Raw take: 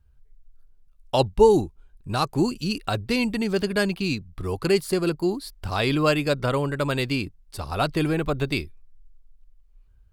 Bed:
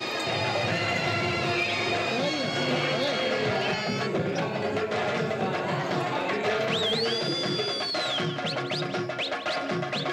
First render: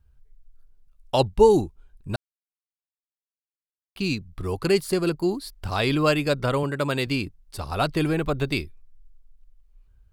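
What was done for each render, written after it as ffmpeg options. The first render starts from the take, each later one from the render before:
-filter_complex "[0:a]asettb=1/sr,asplit=3[s0][s1][s2];[s0]atrim=end=6.634[s3];[s1]atrim=start=6.63:end=7.07,asetpts=PTS-STARTPTS,afade=t=in:d=0.004:c=qsin,afade=t=out:st=0.436:d=0.004:c=qsin,highpass=110[s4];[s2]atrim=start=7.066[s5];[s3][s4]acrossfade=d=0.004:c1=hsin:c2=qsin[s6];[s6][s5]acrossfade=d=0.004:c1=qsin:c2=hsin,asplit=3[s7][s8][s9];[s7]atrim=end=2.16,asetpts=PTS-STARTPTS,afade=t=out:st=2.156:d=0.004:c=hsin[s10];[s8]atrim=start=2.16:end=3.96,asetpts=PTS-STARTPTS,volume=0[s11];[s9]atrim=start=3.96,asetpts=PTS-STARTPTS,afade=t=in:d=0.004:c=hsin[s12];[s10][s11][s12]concat=n=3:v=0:a=1"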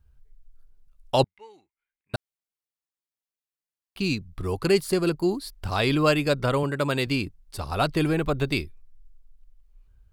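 -filter_complex "[0:a]asettb=1/sr,asplit=3[s0][s1][s2];[s0]atrim=end=1.244[s3];[s1]atrim=start=1.24:end=2.14,asetpts=PTS-STARTPTS,afade=t=in:d=0.004:c=qsin,afade=t=out:st=0.896:d=0.004:c=qsin,bandpass=f=2100:t=q:w=11[s4];[s2]atrim=start=2.136[s5];[s3][s4]acrossfade=d=0.004:c1=hsin:c2=qsin[s6];[s6][s5]acrossfade=d=0.004:c1=qsin:c2=hsin"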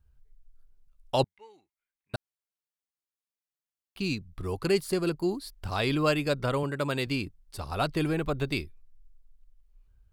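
-af "volume=0.596"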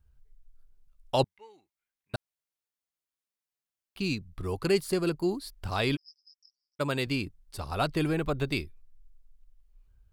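-filter_complex "[0:a]asplit=3[s0][s1][s2];[s0]afade=t=out:st=5.95:d=0.02[s3];[s1]asuperpass=centerf=5400:order=8:qfactor=7.6,afade=t=in:st=5.95:d=0.02,afade=t=out:st=6.79:d=0.02[s4];[s2]afade=t=in:st=6.79:d=0.02[s5];[s3][s4][s5]amix=inputs=3:normalize=0"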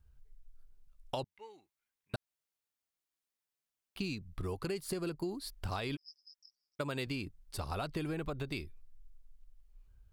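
-af "alimiter=limit=0.0944:level=0:latency=1:release=155,acompressor=threshold=0.02:ratio=6"

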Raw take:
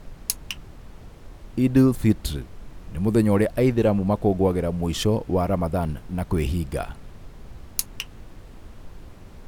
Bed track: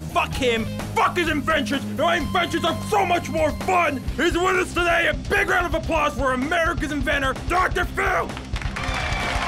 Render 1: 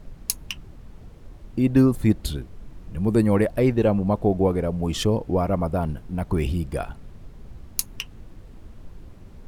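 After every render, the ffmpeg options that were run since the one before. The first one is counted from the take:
-af "afftdn=nr=6:nf=-44"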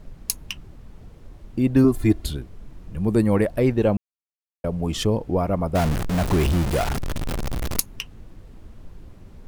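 -filter_complex "[0:a]asettb=1/sr,asplit=3[s0][s1][s2];[s0]atrim=end=1.844[s3];[s1]atrim=start=1.84:end=2.25,asetpts=PTS-STARTPTS,afade=t=in:d=0.004:c=qsin,afade=t=out:st=0.406:d=0.004:c=qsin,aecho=1:1:2.9:0.73,atrim=end_sample=18081[s4];[s2]atrim=start=2.246[s5];[s3][s4]acrossfade=d=0.004:c1=hsin:c2=qsin[s6];[s6][s5]acrossfade=d=0.004:c1=qsin:c2=hsin,asettb=1/sr,asplit=3[s7][s8][s9];[s7]atrim=end=5.754[s10];[s8]atrim=start=5.75:end=7.8,asetpts=PTS-STARTPTS,afade=t=in:d=0.004:c=qsin,afade=t=out:st=2.046:d=0.004:c=qsin,aeval=exprs='val(0)+0.5*0.1*sgn(val(0))':c=same[s11];[s9]atrim=start=7.796[s12];[s10][s11]acrossfade=d=0.004:c1=hsin:c2=qsin[s13];[s13][s12]acrossfade=d=0.004:c1=qsin:c2=hsin,asplit=3[s14][s15][s16];[s14]atrim=end=3.97,asetpts=PTS-STARTPTS,afade=t=out:st=3.966:d=0.004:c=hsin[s17];[s15]atrim=start=3.97:end=4.64,asetpts=PTS-STARTPTS,volume=0[s18];[s16]atrim=start=4.64,asetpts=PTS-STARTPTS,afade=t=in:d=0.004:c=hsin[s19];[s17][s18][s19]concat=n=3:v=0:a=1"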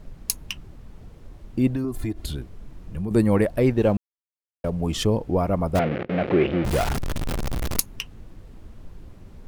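-filter_complex "[0:a]asettb=1/sr,asplit=3[s0][s1][s2];[s0]atrim=end=1.714[s3];[s1]atrim=start=1.71:end=3.11,asetpts=PTS-STARTPTS,afade=t=in:d=0.004:c=qsin,afade=t=out:st=1.396:d=0.004:c=qsin,acompressor=threshold=0.0631:ratio=5:attack=3.2:release=140:knee=1:detection=peak[s4];[s2]atrim=start=3.106[s5];[s3][s4]acrossfade=d=0.004:c1=hsin:c2=qsin[s6];[s6][s5]acrossfade=d=0.004:c1=qsin:c2=hsin,asettb=1/sr,asplit=3[s7][s8][s9];[s7]atrim=end=3.744[s10];[s8]atrim=start=3.74:end=4.7,asetpts=PTS-STARTPTS,afade=t=in:d=0.004:c=qsin,afade=t=out:st=0.956:d=0.004:c=qsin,aeval=exprs='sgn(val(0))*max(abs(val(0))-0.00398,0)':c=same[s11];[s9]atrim=start=4.696[s12];[s10][s11]acrossfade=d=0.004:c1=hsin:c2=qsin[s13];[s13][s12]acrossfade=d=0.004:c1=qsin:c2=hsin,asettb=1/sr,asplit=3[s14][s15][s16];[s14]atrim=end=5.794[s17];[s15]atrim=start=5.79:end=6.65,asetpts=PTS-STARTPTS,afade=t=in:d=0.004:c=qsin,afade=t=out:st=0.856:d=0.004:c=qsin,highpass=180,equalizer=f=360:t=q:w=4:g=5,equalizer=f=520:t=q:w=4:g=9,equalizer=f=980:t=q:w=4:g=-9,equalizer=f=2200:t=q:w=4:g=4,lowpass=f=2900:w=0.5412,lowpass=f=2900:w=1.3066[s18];[s16]atrim=start=6.646[s19];[s17][s18]acrossfade=d=0.004:c1=hsin:c2=qsin[s20];[s20][s19]acrossfade=d=0.004:c1=qsin:c2=hsin"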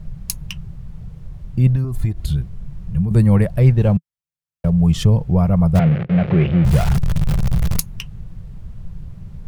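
-af "lowshelf=f=210:t=q:w=3:g=9"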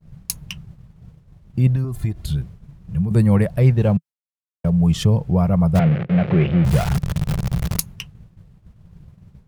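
-af "highpass=f=100:p=1,agate=range=0.0224:threshold=0.0282:ratio=3:detection=peak"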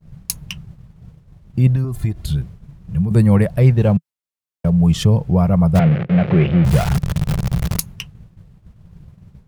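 -af "volume=1.33,alimiter=limit=0.794:level=0:latency=1"

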